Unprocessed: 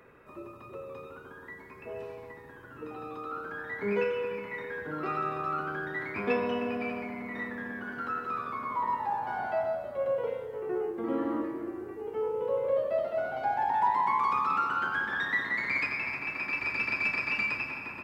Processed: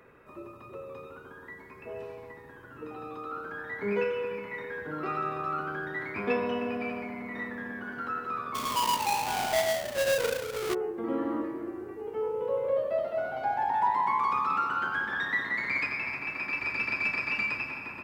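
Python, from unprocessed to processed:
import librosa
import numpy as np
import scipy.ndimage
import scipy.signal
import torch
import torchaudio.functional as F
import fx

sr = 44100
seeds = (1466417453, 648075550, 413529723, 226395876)

y = fx.halfwave_hold(x, sr, at=(8.54, 10.73), fade=0.02)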